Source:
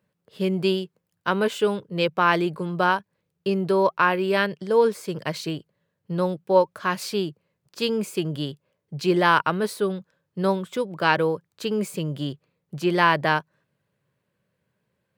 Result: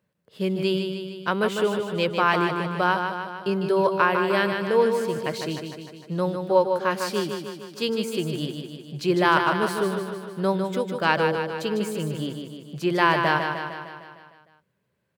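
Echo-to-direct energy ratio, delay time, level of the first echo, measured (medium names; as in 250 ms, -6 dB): -4.0 dB, 152 ms, -6.0 dB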